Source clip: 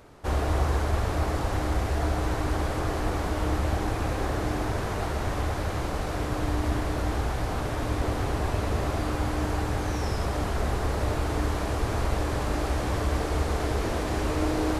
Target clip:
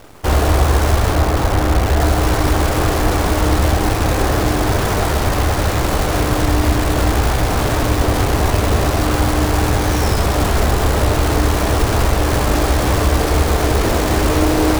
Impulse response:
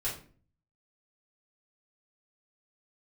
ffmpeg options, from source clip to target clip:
-filter_complex "[0:a]asettb=1/sr,asplit=3[link_01][link_02][link_03];[link_01]atrim=end=1.124[link_04];[link_02]atrim=start=1.12:end=2,asetpts=PTS-STARTPTS,afade=type=in:duration=0.004:curve=qsin,afade=type=out:start_time=0.876:duration=0.004:curve=qsin,lowpass=2300[link_05];[link_03]atrim=start=1.996[link_06];[link_04][link_05]acrossfade=duration=0.004:curve1=hsin:curve2=qsin[link_07];[link_07][link_06]acrossfade=duration=0.004:curve1=qsin:curve2=hsin,asplit=2[link_08][link_09];[link_09]alimiter=limit=-20dB:level=0:latency=1:release=374,volume=-2dB[link_10];[link_08][link_10]amix=inputs=2:normalize=0,acrusher=bits=6:dc=4:mix=0:aa=0.000001,volume=8dB"

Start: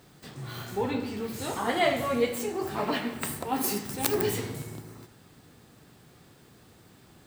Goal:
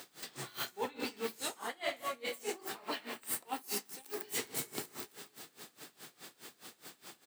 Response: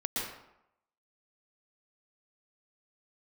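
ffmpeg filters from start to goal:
-filter_complex "[0:a]lowpass=frequency=2500:poles=1,asplit=2[link_01][link_02];[link_02]aecho=0:1:264|528|792|1056|1320:0.1|0.057|0.0325|0.0185|0.0106[link_03];[link_01][link_03]amix=inputs=2:normalize=0,crystalizer=i=8.5:c=0,highpass=280,areverse,acompressor=threshold=-35dB:ratio=12,areverse,aeval=exprs='val(0)*pow(10,-23*(0.5-0.5*cos(2*PI*4.8*n/s))/20)':channel_layout=same,volume=4dB"

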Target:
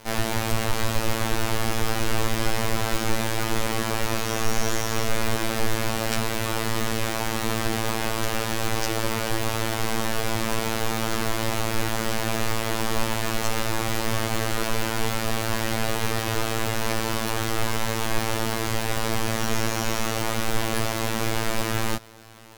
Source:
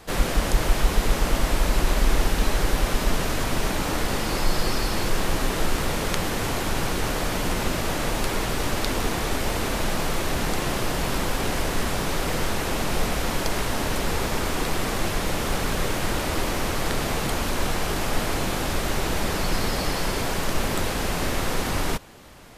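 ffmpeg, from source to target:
ffmpeg -i in.wav -af "afftfilt=real='hypot(re,im)*cos(PI*b)':imag='0':win_size=2048:overlap=0.75,asetrate=57191,aresample=44100,atempo=0.771105,volume=3dB" out.wav

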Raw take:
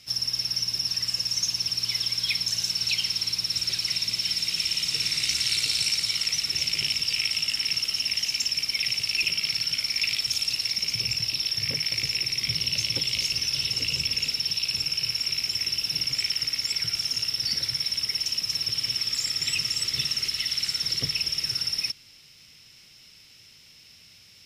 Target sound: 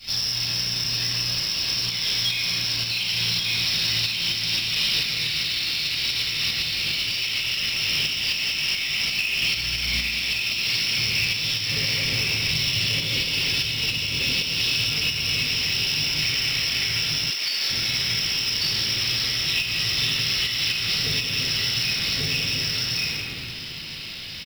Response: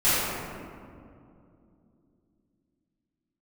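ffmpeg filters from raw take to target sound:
-filter_complex "[0:a]asettb=1/sr,asplit=3[link_01][link_02][link_03];[link_01]atrim=end=11.934[link_04];[link_02]atrim=start=11.93:end=12.49,asetpts=PTS-STARTPTS,afade=type=in:duration=0.004:curve=qsin,afade=type=out:start_time=0.556:duration=0.004:curve=qsin,asoftclip=type=hard:threshold=-29.5dB[link_05];[link_03]atrim=start=12.486[link_06];[link_04][link_05]acrossfade=duration=0.004:curve1=hsin:curve2=qsin[link_07];[link_07][link_06]acrossfade=duration=0.004:curve1=qsin:curve2=hsin,aecho=1:1:1140:0.668,asettb=1/sr,asplit=3[link_08][link_09][link_10];[link_08]atrim=end=9.364[link_11];[link_09]atrim=start=9.36:end=9.91,asetpts=PTS-STARTPTS,afade=type=in:duration=0.004:curve=qsin,afade=type=out:start_time=0.546:duration=0.004:curve=qsin,aeval=exprs='val(0)+0.0112*(sin(2*PI*60*n/s)+sin(2*PI*2*60*n/s)/2+sin(2*PI*3*60*n/s)/3+sin(2*PI*4*60*n/s)/4+sin(2*PI*5*60*n/s)/5)':channel_layout=same[link_12];[link_10]atrim=start=9.906[link_13];[link_11][link_12]acrossfade=duration=0.004:curve1=hsin:curve2=qsin[link_14];[link_14][link_13]acrossfade=duration=0.004:curve1=qsin:curve2=hsin[link_15];[1:a]atrim=start_sample=2205,asetrate=57330,aresample=44100[link_16];[link_15][link_16]afir=irnorm=-1:irlink=0,acompressor=threshold=-18dB:ratio=6,asoftclip=type=tanh:threshold=-9.5dB,aresample=11025,aresample=44100,highshelf=frequency=2800:gain=8.5,acrusher=bits=3:mode=log:mix=0:aa=0.000001,alimiter=limit=-14.5dB:level=0:latency=1:release=368,asettb=1/sr,asplit=3[link_17][link_18][link_19];[link_17]atrim=end=17.304[link_20];[link_18]atrim=start=17.3:end=17.7,asetpts=PTS-STARTPTS,afade=type=in:duration=0.004:curve=qsin,afade=type=out:start_time=0.396:duration=0.004:curve=qsin,highpass=420[link_21];[link_19]atrim=start=17.696[link_22];[link_20][link_21]acrossfade=duration=0.004:curve1=hsin:curve2=qsin[link_23];[link_23][link_22]acrossfade=duration=0.004:curve1=qsin:curve2=hsin"

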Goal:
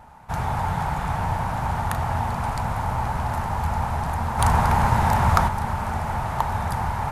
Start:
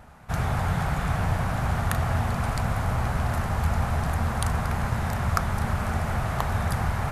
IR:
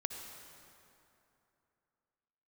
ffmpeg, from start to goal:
-filter_complex "[0:a]equalizer=frequency=900:width_type=o:width=0.32:gain=13.5,asplit=3[link_01][link_02][link_03];[link_01]afade=type=out:start_time=4.38:duration=0.02[link_04];[link_02]acontrast=86,afade=type=in:start_time=4.38:duration=0.02,afade=type=out:start_time=5.47:duration=0.02[link_05];[link_03]afade=type=in:start_time=5.47:duration=0.02[link_06];[link_04][link_05][link_06]amix=inputs=3:normalize=0,volume=-1.5dB"

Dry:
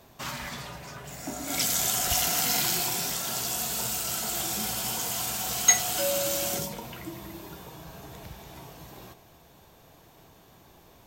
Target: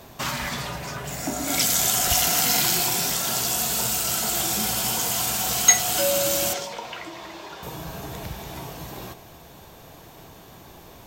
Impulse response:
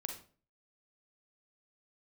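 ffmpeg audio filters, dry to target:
-filter_complex "[0:a]asplit=2[link_01][link_02];[link_02]acompressor=threshold=-36dB:ratio=6,volume=0.5dB[link_03];[link_01][link_03]amix=inputs=2:normalize=0,asettb=1/sr,asplit=3[link_04][link_05][link_06];[link_04]atrim=end=6.534[link_07];[link_05]atrim=start=6.53:end=7.63,asetpts=PTS-STARTPTS,afade=type=in:duration=0.004:curve=qsin,afade=type=out:start_time=1.096:duration=0.004:curve=qsin,acrossover=split=440 6400:gain=0.141 1 0.1[link_08][link_09][link_10];[link_08][link_09][link_10]amix=inputs=3:normalize=0[link_11];[link_06]atrim=start=7.626[link_12];[link_07][link_11]acrossfade=duration=0.004:curve1=hsin:curve2=qsin[link_13];[link_13][link_12]acrossfade=duration=0.004:curve1=qsin:curve2=hsin,volume=3dB"

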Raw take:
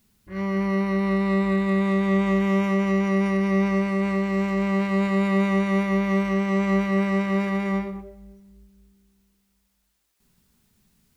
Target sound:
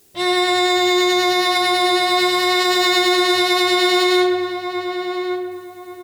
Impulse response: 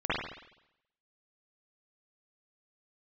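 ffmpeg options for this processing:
-filter_complex "[0:a]lowshelf=frequency=90:gain=-8.5,bandreject=frequency=50:width_type=h:width=6,bandreject=frequency=100:width_type=h:width=6,bandreject=frequency=150:width_type=h:width=6,bandreject=frequency=200:width_type=h:width=6,bandreject=frequency=250:width_type=h:width=6,bandreject=frequency=300:width_type=h:width=6,bandreject=frequency=350:width_type=h:width=6,bandreject=frequency=400:width_type=h:width=6,asetrate=81585,aresample=44100,highshelf=frequency=3200:gain=10,asplit=2[link_01][link_02];[link_02]adelay=1131,lowpass=frequency=1300:poles=1,volume=-7dB,asplit=2[link_03][link_04];[link_04]adelay=1131,lowpass=frequency=1300:poles=1,volume=0.32,asplit=2[link_05][link_06];[link_06]adelay=1131,lowpass=frequency=1300:poles=1,volume=0.32,asplit=2[link_07][link_08];[link_08]adelay=1131,lowpass=frequency=1300:poles=1,volume=0.32[link_09];[link_01][link_03][link_05][link_07][link_09]amix=inputs=5:normalize=0,asplit=2[link_10][link_11];[1:a]atrim=start_sample=2205,adelay=134[link_12];[link_11][link_12]afir=irnorm=-1:irlink=0,volume=-22.5dB[link_13];[link_10][link_13]amix=inputs=2:normalize=0,alimiter=level_in=14.5dB:limit=-1dB:release=50:level=0:latency=1,volume=-6dB"

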